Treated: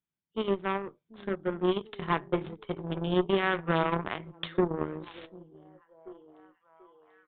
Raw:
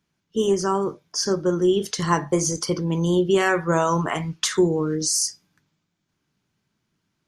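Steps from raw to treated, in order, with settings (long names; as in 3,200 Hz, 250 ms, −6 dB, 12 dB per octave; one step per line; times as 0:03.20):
echo through a band-pass that steps 739 ms, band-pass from 220 Hz, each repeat 0.7 octaves, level −8 dB
harmonic generator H 6 −16 dB, 7 −19 dB, 8 −19 dB, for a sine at −5.5 dBFS
downsampling to 8,000 Hz
level −7 dB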